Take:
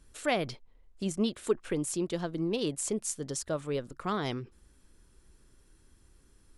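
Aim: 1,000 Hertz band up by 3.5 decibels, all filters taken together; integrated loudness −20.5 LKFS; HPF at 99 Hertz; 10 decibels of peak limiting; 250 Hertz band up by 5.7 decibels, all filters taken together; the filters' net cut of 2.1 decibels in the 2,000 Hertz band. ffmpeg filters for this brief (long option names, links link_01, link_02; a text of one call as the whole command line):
ffmpeg -i in.wav -af "highpass=99,equalizer=frequency=250:width_type=o:gain=7.5,equalizer=frequency=1000:width_type=o:gain=5.5,equalizer=frequency=2000:width_type=o:gain=-4.5,volume=12dB,alimiter=limit=-10dB:level=0:latency=1" out.wav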